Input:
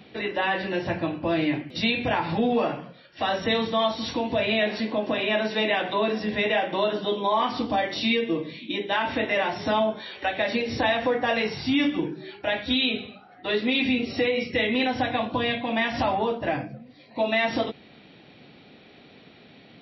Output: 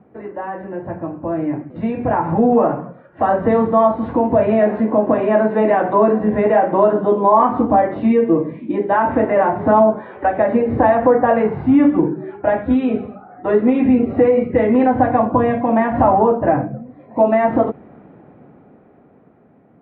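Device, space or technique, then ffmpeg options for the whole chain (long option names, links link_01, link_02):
action camera in a waterproof case: -af "lowpass=frequency=1300:width=0.5412,lowpass=frequency=1300:width=1.3066,dynaudnorm=framelen=230:gausssize=17:maxgain=14dB" -ar 44100 -c:a aac -b:a 96k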